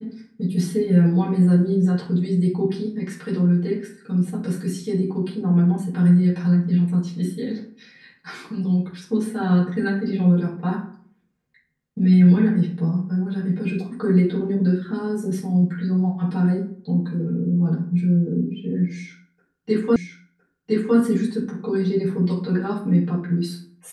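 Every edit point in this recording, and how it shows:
19.96 repeat of the last 1.01 s

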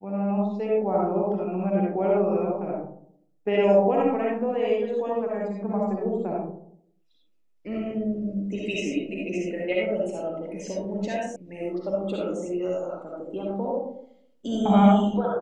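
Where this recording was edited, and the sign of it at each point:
11.36 sound cut off

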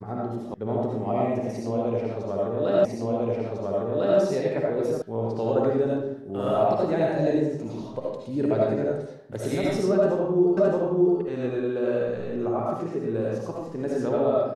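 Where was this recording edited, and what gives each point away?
0.54 sound cut off
2.85 repeat of the last 1.35 s
5.02 sound cut off
10.57 repeat of the last 0.62 s

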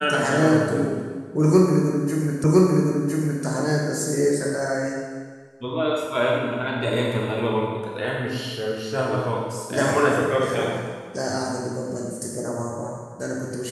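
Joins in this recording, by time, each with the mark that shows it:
2.44 repeat of the last 1.01 s

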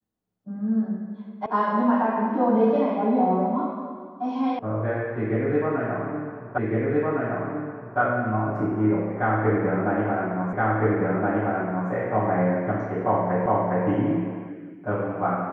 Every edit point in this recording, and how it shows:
1.46 sound cut off
4.59 sound cut off
6.58 repeat of the last 1.41 s
10.53 repeat of the last 1.37 s
13.46 repeat of the last 0.41 s

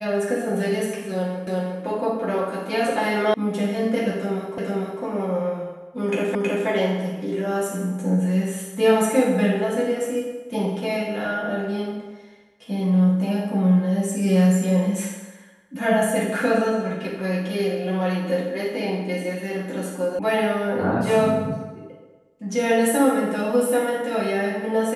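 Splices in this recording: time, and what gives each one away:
1.47 repeat of the last 0.36 s
3.34 sound cut off
4.58 repeat of the last 0.45 s
6.35 repeat of the last 0.32 s
20.19 sound cut off

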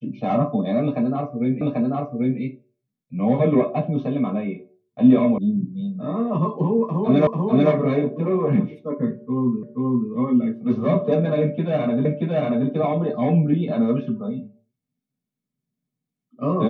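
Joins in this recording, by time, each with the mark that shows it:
1.61 repeat of the last 0.79 s
5.38 sound cut off
7.27 repeat of the last 0.44 s
9.63 repeat of the last 0.48 s
12.05 repeat of the last 0.63 s

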